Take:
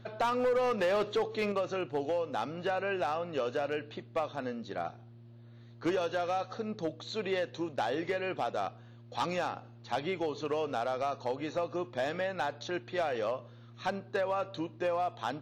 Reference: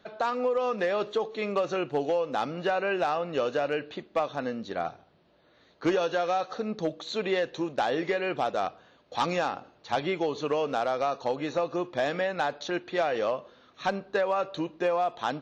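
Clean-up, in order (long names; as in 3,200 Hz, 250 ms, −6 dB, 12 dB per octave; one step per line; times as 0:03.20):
clipped peaks rebuilt −24.5 dBFS
hum removal 116.7 Hz, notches 3
level correction +5 dB, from 0:01.52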